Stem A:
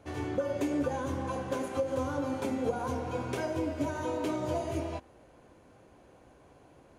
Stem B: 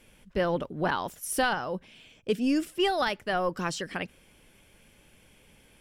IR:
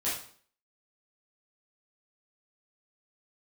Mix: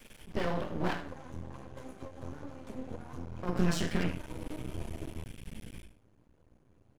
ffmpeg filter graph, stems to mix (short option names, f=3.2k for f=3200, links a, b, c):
-filter_complex "[0:a]flanger=delay=2:depth=8.4:regen=-21:speed=1.3:shape=sinusoidal,adelay=250,volume=-8.5dB,asplit=2[a][b];[b]volume=-15.5dB[c];[1:a]acompressor=threshold=-40dB:ratio=2,volume=3dB,asplit=3[d][e][f];[d]atrim=end=0.93,asetpts=PTS-STARTPTS,afade=t=out:st=0.926:d=0.004:c=hsin[g];[e]atrim=start=0.93:end=3.43,asetpts=PTS-STARTPTS,volume=0[h];[f]atrim=start=3.43,asetpts=PTS-STARTPTS,afade=t=in:d=0.004:c=hsin[i];[g][h][i]concat=n=3:v=0:a=1,asplit=2[j][k];[k]volume=-4.5dB[l];[2:a]atrim=start_sample=2205[m];[c][l]amix=inputs=2:normalize=0[n];[n][m]afir=irnorm=-1:irlink=0[o];[a][j][o]amix=inputs=3:normalize=0,bandreject=f=50:t=h:w=6,bandreject=f=100:t=h:w=6,asubboost=boost=6:cutoff=240,aeval=exprs='max(val(0),0)':c=same"